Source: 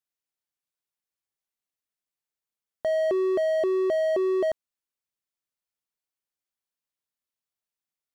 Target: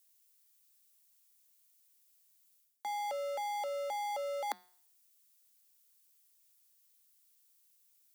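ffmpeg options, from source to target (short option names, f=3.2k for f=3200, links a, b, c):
-af "crystalizer=i=8.5:c=0,areverse,acompressor=threshold=-36dB:ratio=6,areverse,bandreject=f=177.4:t=h:w=4,bandreject=f=354.8:t=h:w=4,bandreject=f=532.2:t=h:w=4,bandreject=f=709.6:t=h:w=4,bandreject=f=887:t=h:w=4,bandreject=f=1.0644k:t=h:w=4,bandreject=f=1.2418k:t=h:w=4,bandreject=f=1.4192k:t=h:w=4,bandreject=f=1.5966k:t=h:w=4,bandreject=f=1.774k:t=h:w=4,bandreject=f=1.9514k:t=h:w=4,bandreject=f=2.1288k:t=h:w=4,bandreject=f=2.3062k:t=h:w=4,bandreject=f=2.4836k:t=h:w=4,bandreject=f=2.661k:t=h:w=4,bandreject=f=2.8384k:t=h:w=4,bandreject=f=3.0158k:t=h:w=4,bandreject=f=3.1932k:t=h:w=4,bandreject=f=3.3706k:t=h:w=4,bandreject=f=3.548k:t=h:w=4,bandreject=f=3.7254k:t=h:w=4,bandreject=f=3.9028k:t=h:w=4,bandreject=f=4.0802k:t=h:w=4,bandreject=f=4.2576k:t=h:w=4,bandreject=f=4.435k:t=h:w=4,bandreject=f=4.6124k:t=h:w=4,bandreject=f=4.7898k:t=h:w=4,bandreject=f=4.9672k:t=h:w=4,bandreject=f=5.1446k:t=h:w=4,bandreject=f=5.322k:t=h:w=4,bandreject=f=5.4994k:t=h:w=4,bandreject=f=5.6768k:t=h:w=4,bandreject=f=5.8542k:t=h:w=4,afreqshift=190"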